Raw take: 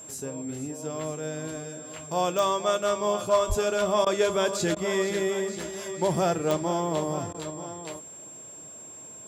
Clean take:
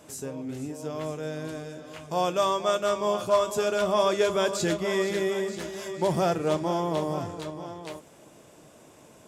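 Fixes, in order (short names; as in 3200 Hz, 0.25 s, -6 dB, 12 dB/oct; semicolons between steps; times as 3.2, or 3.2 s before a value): de-click; notch 7500 Hz, Q 30; 3.48–3.6 HPF 140 Hz 24 dB/oct; interpolate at 4.05/4.75/7.33, 13 ms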